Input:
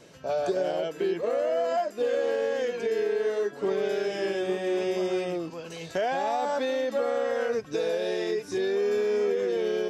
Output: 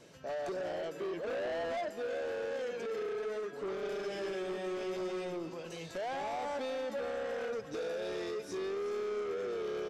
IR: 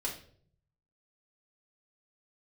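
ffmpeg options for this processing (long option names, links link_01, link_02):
-filter_complex "[0:a]asettb=1/sr,asplit=3[link_01][link_02][link_03];[link_01]atrim=end=1.274[link_04];[link_02]atrim=start=1.27:end=1.89,asetpts=PTS-STARTPTS,afade=type=in:duration=0.004:curve=qsin,afade=type=out:start_time=0.616:duration=0.004:curve=qsin,equalizer=frequency=140:width=0.33:gain=11[link_05];[link_03]atrim=start=1.886[link_06];[link_04][link_05]acrossfade=duration=0.004:curve1=hsin:curve2=qsin[link_07];[link_07][link_06]acrossfade=duration=0.004:curve1=qsin:curve2=hsin,asoftclip=type=tanh:threshold=-29dB,asplit=2[link_08][link_09];[link_09]aecho=0:1:378:0.224[link_10];[link_08][link_10]amix=inputs=2:normalize=0,volume=-5dB"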